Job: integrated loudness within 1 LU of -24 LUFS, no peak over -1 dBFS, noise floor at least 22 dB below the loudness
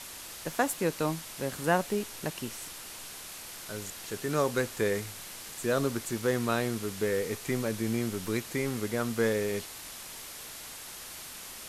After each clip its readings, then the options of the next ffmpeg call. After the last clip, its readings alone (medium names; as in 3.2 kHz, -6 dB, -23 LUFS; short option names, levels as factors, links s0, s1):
noise floor -44 dBFS; noise floor target -55 dBFS; loudness -32.5 LUFS; peak level -12.5 dBFS; loudness target -24.0 LUFS
-> -af "afftdn=nr=11:nf=-44"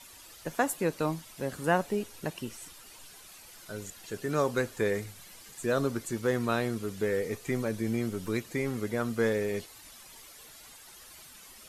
noise floor -52 dBFS; noise floor target -54 dBFS
-> -af "afftdn=nr=6:nf=-52"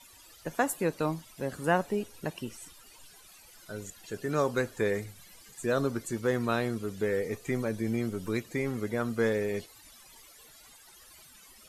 noise floor -55 dBFS; loudness -31.5 LUFS; peak level -12.5 dBFS; loudness target -24.0 LUFS
-> -af "volume=2.37"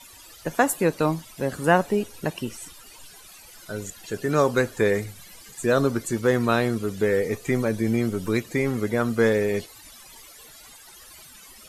loudness -24.0 LUFS; peak level -5.0 dBFS; noise floor -48 dBFS